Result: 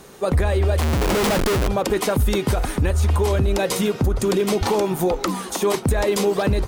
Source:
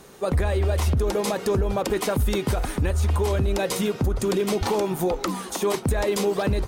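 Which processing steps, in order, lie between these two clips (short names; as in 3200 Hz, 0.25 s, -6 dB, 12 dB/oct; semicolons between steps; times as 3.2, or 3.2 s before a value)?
0.81–1.68 Schmitt trigger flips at -28.5 dBFS; gain +3.5 dB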